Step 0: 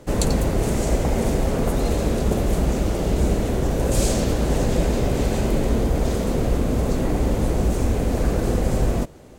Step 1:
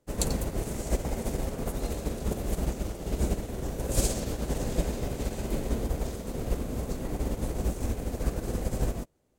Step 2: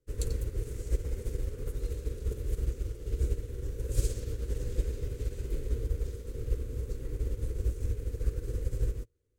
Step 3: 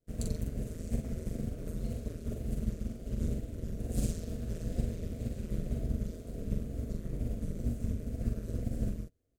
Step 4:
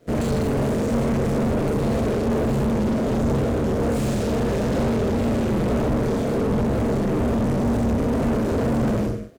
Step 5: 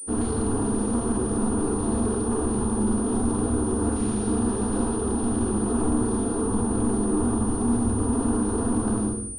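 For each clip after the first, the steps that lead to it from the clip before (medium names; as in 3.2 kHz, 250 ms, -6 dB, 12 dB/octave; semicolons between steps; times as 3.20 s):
treble shelf 7 kHz +8 dB; upward expansion 2.5:1, over -30 dBFS; trim -4.5 dB
FFT filter 110 Hz 0 dB, 190 Hz -19 dB, 470 Hz -3 dB, 690 Hz -29 dB, 1.4 kHz -11 dB
AM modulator 170 Hz, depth 95%; wow and flutter 70 cents; doubling 43 ms -4 dB
on a send: reverse bouncing-ball echo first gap 30 ms, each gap 1.2×, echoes 5; on the sum: overdrive pedal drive 42 dB, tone 1 kHz, clips at -15 dBFS; trim +2 dB
static phaser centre 580 Hz, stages 6; on a send at -5 dB: reverberation RT60 0.45 s, pre-delay 4 ms; on the sum: class-D stage that switches slowly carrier 9.3 kHz; trim -2 dB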